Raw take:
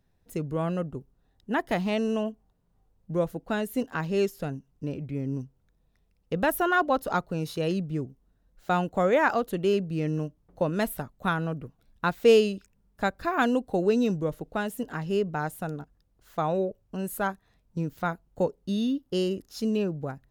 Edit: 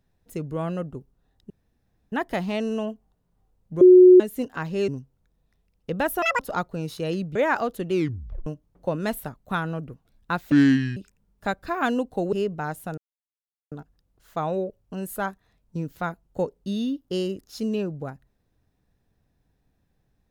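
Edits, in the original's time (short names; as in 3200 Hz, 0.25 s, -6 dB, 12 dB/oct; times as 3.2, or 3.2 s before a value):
1.5 insert room tone 0.62 s
3.19–3.58 bleep 365 Hz -7 dBFS
4.26–5.31 cut
6.65–6.97 speed 184%
7.93–9.09 cut
9.65 tape stop 0.55 s
12.25–12.53 speed 62%
13.89–15.08 cut
15.73 insert silence 0.74 s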